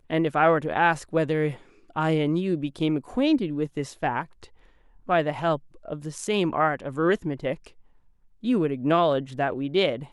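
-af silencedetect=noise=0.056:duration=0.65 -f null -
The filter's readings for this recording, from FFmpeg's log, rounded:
silence_start: 4.22
silence_end: 5.09 | silence_duration: 0.87
silence_start: 7.53
silence_end: 8.46 | silence_duration: 0.93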